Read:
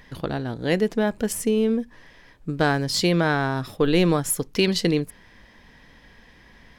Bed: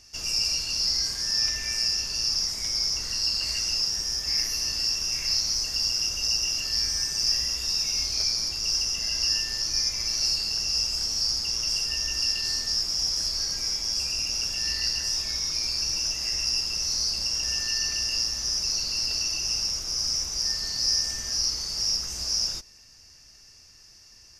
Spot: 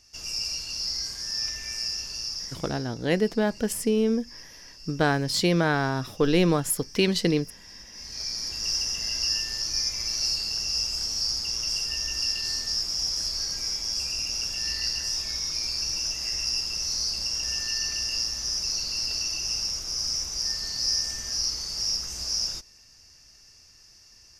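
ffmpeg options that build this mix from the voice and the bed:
ffmpeg -i stem1.wav -i stem2.wav -filter_complex "[0:a]adelay=2400,volume=-2dB[link_01];[1:a]volume=13.5dB,afade=type=out:start_time=2.1:duration=0.79:silence=0.177828,afade=type=in:start_time=7.92:duration=0.72:silence=0.11885[link_02];[link_01][link_02]amix=inputs=2:normalize=0" out.wav

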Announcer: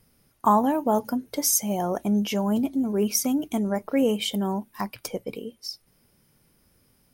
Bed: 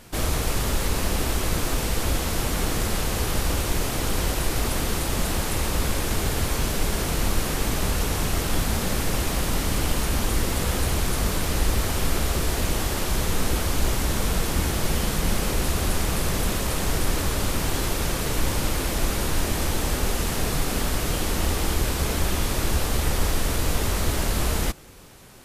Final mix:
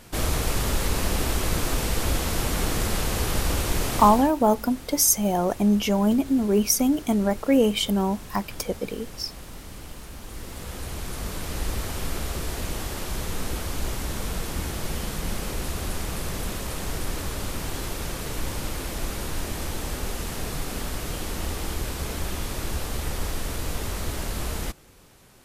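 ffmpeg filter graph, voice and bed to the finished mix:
ffmpeg -i stem1.wav -i stem2.wav -filter_complex "[0:a]adelay=3550,volume=3dB[link_01];[1:a]volume=10dB,afade=type=out:start_time=3.97:duration=0.34:silence=0.158489,afade=type=in:start_time=10.2:duration=1.5:silence=0.298538[link_02];[link_01][link_02]amix=inputs=2:normalize=0" out.wav

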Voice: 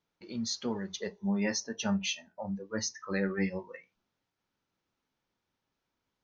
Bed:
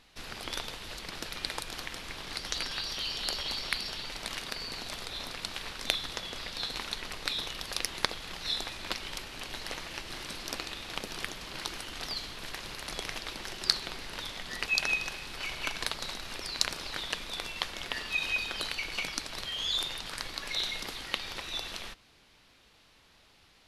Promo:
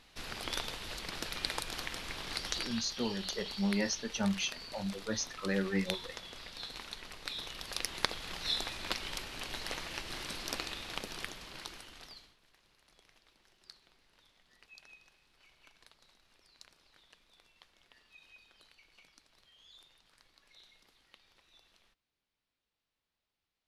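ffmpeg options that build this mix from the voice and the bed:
ffmpeg -i stem1.wav -i stem2.wav -filter_complex "[0:a]adelay=2350,volume=-1.5dB[link_01];[1:a]volume=7dB,afade=type=out:start_time=2.41:duration=0.44:silence=0.398107,afade=type=in:start_time=7.22:duration=1.13:silence=0.421697,afade=type=out:start_time=10.62:duration=1.76:silence=0.0446684[link_02];[link_01][link_02]amix=inputs=2:normalize=0" out.wav

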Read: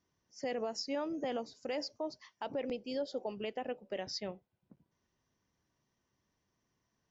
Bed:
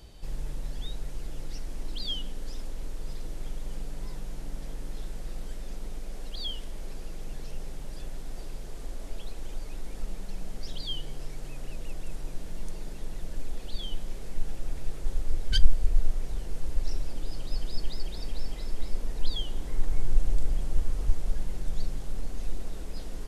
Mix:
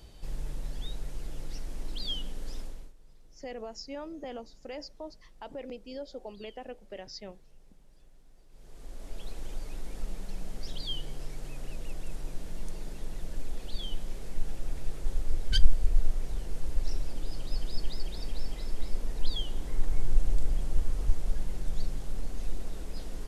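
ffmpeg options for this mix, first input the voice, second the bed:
ffmpeg -i stem1.wav -i stem2.wav -filter_complex "[0:a]adelay=3000,volume=-3.5dB[link_01];[1:a]volume=18.5dB,afade=type=out:start_time=2.58:duration=0.35:silence=0.105925,afade=type=in:start_time=8.49:duration=0.84:silence=0.1[link_02];[link_01][link_02]amix=inputs=2:normalize=0" out.wav

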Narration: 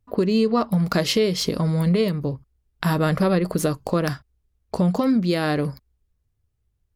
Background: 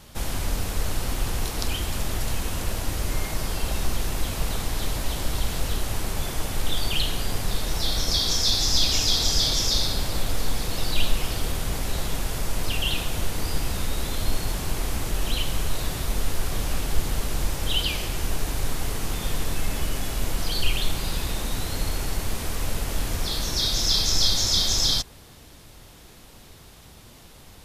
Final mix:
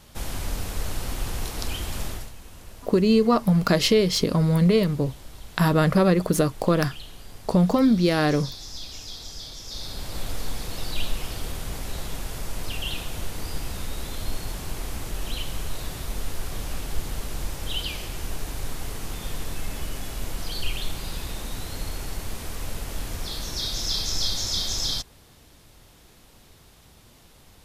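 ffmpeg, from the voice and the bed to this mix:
ffmpeg -i stem1.wav -i stem2.wav -filter_complex "[0:a]adelay=2750,volume=1dB[link_01];[1:a]volume=8.5dB,afade=type=out:start_time=2.05:duration=0.26:silence=0.211349,afade=type=in:start_time=9.64:duration=0.61:silence=0.266073[link_02];[link_01][link_02]amix=inputs=2:normalize=0" out.wav

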